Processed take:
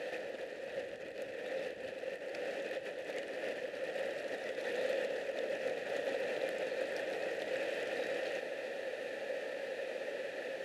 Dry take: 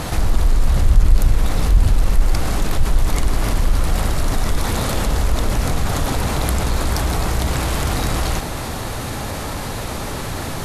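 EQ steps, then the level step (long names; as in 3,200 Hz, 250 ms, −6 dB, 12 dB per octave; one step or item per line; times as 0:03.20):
formant filter e
high-pass filter 250 Hz 12 dB per octave
−1.0 dB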